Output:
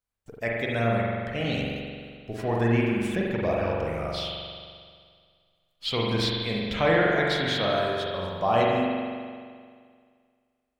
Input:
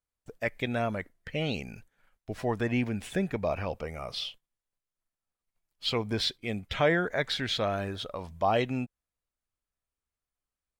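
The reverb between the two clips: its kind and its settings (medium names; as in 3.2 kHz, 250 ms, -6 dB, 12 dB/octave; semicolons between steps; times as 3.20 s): spring tank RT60 2 s, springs 43 ms, chirp 35 ms, DRR -3.5 dB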